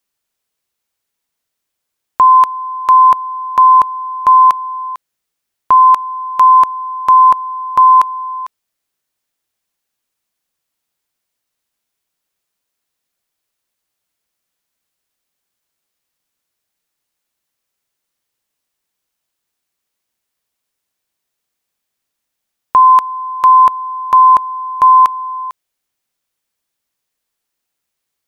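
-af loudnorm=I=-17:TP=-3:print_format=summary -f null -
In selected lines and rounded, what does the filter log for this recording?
Input Integrated:     -9.9 LUFS
Input True Peak:      -1.8 dBTP
Input LRA:            11.5 LU
Input Threshold:     -20.9 LUFS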